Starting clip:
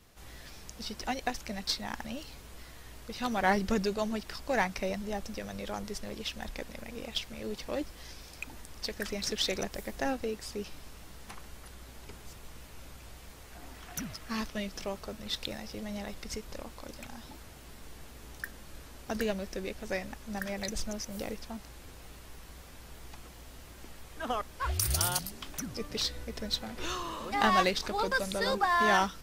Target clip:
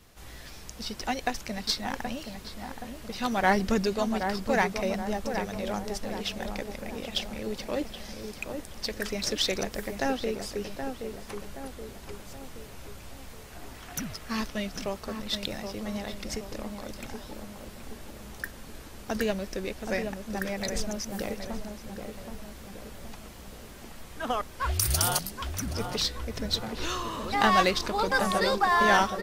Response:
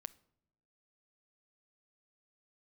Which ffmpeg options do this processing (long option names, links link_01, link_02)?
-filter_complex "[0:a]asplit=2[link_01][link_02];[link_02]adelay=774,lowpass=frequency=1400:poles=1,volume=-6dB,asplit=2[link_03][link_04];[link_04]adelay=774,lowpass=frequency=1400:poles=1,volume=0.53,asplit=2[link_05][link_06];[link_06]adelay=774,lowpass=frequency=1400:poles=1,volume=0.53,asplit=2[link_07][link_08];[link_08]adelay=774,lowpass=frequency=1400:poles=1,volume=0.53,asplit=2[link_09][link_10];[link_10]adelay=774,lowpass=frequency=1400:poles=1,volume=0.53,asplit=2[link_11][link_12];[link_12]adelay=774,lowpass=frequency=1400:poles=1,volume=0.53,asplit=2[link_13][link_14];[link_14]adelay=774,lowpass=frequency=1400:poles=1,volume=0.53[link_15];[link_01][link_03][link_05][link_07][link_09][link_11][link_13][link_15]amix=inputs=8:normalize=0,volume=3.5dB"